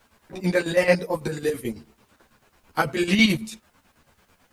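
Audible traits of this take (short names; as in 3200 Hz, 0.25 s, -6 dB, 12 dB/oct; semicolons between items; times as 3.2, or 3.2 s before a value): chopped level 9.1 Hz, depth 65%, duty 55%; a quantiser's noise floor 12-bit, dither triangular; a shimmering, thickened sound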